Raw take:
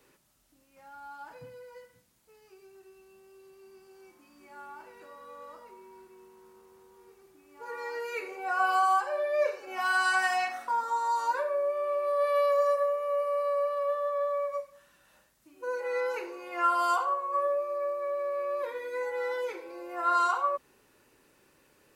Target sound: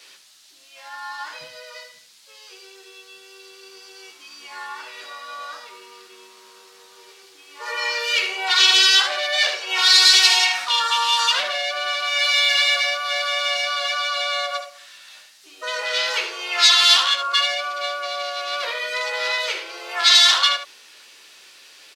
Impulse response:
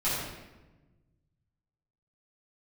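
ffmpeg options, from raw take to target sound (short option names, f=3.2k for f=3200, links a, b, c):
-filter_complex "[0:a]aeval=exprs='0.0447*(abs(mod(val(0)/0.0447+3,4)-2)-1)':c=same,apsyclip=31.5dB,asplit=2[a][b];[b]asetrate=55563,aresample=44100,atempo=0.793701,volume=-6dB[c];[a][c]amix=inputs=2:normalize=0,bandpass=f=4.2k:t=q:w=1.7:csg=0,asplit=2[d][e];[e]aecho=0:1:13|75:0.398|0.335[f];[d][f]amix=inputs=2:normalize=0,volume=-6dB"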